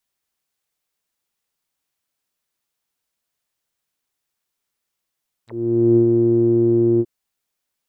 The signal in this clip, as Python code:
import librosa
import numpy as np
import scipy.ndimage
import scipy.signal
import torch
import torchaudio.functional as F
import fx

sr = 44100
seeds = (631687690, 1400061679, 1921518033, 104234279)

y = fx.sub_voice(sr, note=46, wave='saw', cutoff_hz=340.0, q=11.0, env_oct=5.5, env_s=0.05, attack_ms=490.0, decay_s=0.1, sustain_db=-3.0, release_s=0.05, note_s=1.53, slope=12)